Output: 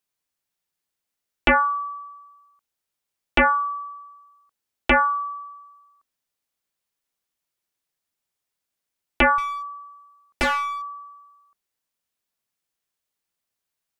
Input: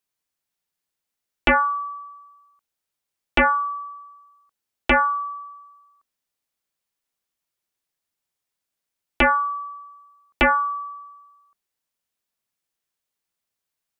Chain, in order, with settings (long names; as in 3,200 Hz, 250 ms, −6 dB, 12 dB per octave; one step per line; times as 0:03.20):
0:09.38–0:10.82: asymmetric clip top −29.5 dBFS